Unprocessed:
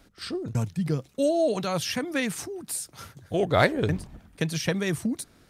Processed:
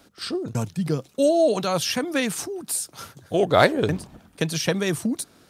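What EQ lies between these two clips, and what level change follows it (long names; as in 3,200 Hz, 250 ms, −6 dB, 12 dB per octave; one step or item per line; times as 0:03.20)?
high-pass filter 210 Hz 6 dB per octave
parametric band 2,000 Hz −4.5 dB 0.58 octaves
+5.5 dB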